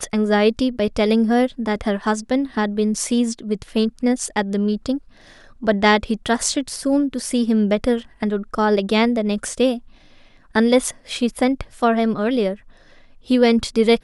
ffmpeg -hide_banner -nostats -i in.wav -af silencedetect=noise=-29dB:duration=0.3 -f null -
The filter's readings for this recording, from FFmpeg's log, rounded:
silence_start: 4.98
silence_end: 5.63 | silence_duration: 0.65
silence_start: 9.78
silence_end: 10.55 | silence_duration: 0.77
silence_start: 12.55
silence_end: 13.30 | silence_duration: 0.75